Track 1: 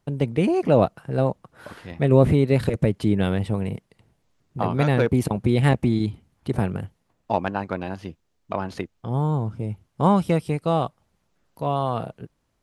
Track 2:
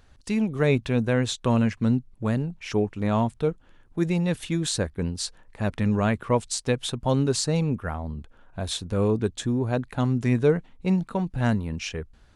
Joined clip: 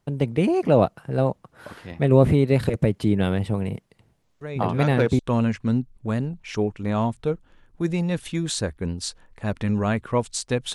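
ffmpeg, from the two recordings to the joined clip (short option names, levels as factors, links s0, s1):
-filter_complex "[1:a]asplit=2[s0][s1];[0:a]apad=whole_dur=10.74,atrim=end=10.74,atrim=end=5.192[s2];[s1]atrim=start=1.358:end=6.91[s3];[s0]atrim=start=0.58:end=1.36,asetpts=PTS-STARTPTS,volume=0.237,afade=t=in:d=0.004:c=hsin,afade=t=out:st=0.776:d=0.004:c=hsin,adelay=194481S[s4];[s2][s3]acrossfade=d=0.004:c1=hsin:c2=hsin[s5];[s5][s4]amix=inputs=2:normalize=0"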